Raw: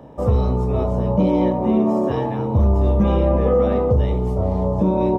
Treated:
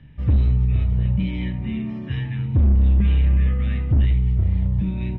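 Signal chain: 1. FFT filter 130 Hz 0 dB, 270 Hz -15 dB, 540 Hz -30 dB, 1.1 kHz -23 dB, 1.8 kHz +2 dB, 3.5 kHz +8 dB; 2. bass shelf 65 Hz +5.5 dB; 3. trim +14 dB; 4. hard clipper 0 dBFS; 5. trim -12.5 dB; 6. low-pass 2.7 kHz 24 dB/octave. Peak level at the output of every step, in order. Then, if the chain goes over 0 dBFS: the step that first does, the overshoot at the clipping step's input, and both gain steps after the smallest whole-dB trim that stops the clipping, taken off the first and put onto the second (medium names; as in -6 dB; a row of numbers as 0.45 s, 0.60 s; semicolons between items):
-8.5 dBFS, -6.5 dBFS, +7.5 dBFS, 0.0 dBFS, -12.5 dBFS, -12.5 dBFS; step 3, 7.5 dB; step 3 +6 dB, step 5 -4.5 dB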